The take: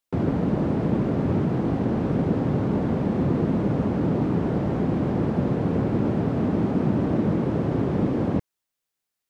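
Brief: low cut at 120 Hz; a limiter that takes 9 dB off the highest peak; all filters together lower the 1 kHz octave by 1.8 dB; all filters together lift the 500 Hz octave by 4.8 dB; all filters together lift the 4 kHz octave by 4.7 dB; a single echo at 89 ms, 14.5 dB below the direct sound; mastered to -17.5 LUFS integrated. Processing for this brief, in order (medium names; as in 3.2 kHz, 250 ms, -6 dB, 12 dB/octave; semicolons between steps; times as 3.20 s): high-pass 120 Hz; peaking EQ 500 Hz +7.5 dB; peaking EQ 1 kHz -6.5 dB; peaking EQ 4 kHz +6.5 dB; peak limiter -17.5 dBFS; delay 89 ms -14.5 dB; trim +8.5 dB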